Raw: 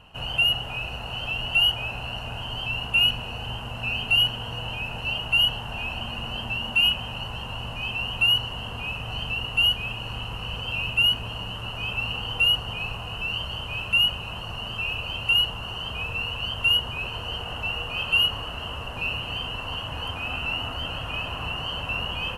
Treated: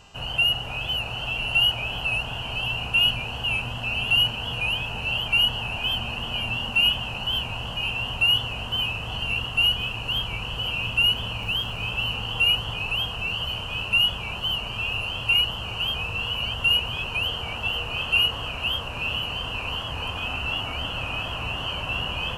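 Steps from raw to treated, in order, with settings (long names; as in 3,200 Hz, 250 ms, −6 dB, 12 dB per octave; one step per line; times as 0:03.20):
0:11.38–0:11.91: surface crackle 290 per second −41 dBFS
hum with harmonics 400 Hz, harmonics 20, −59 dBFS −1 dB per octave
feedback echo with a swinging delay time 504 ms, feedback 58%, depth 178 cents, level −7 dB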